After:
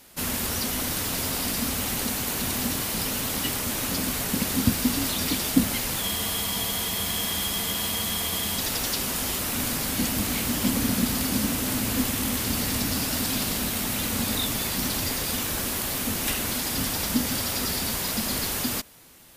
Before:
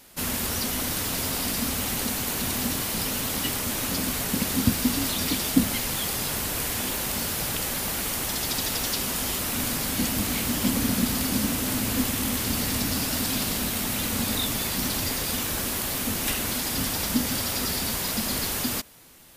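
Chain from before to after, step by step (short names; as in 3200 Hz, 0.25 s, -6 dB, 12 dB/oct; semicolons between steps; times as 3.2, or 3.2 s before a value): added harmonics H 4 -41 dB, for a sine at -6 dBFS; spectral freeze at 6.04, 2.55 s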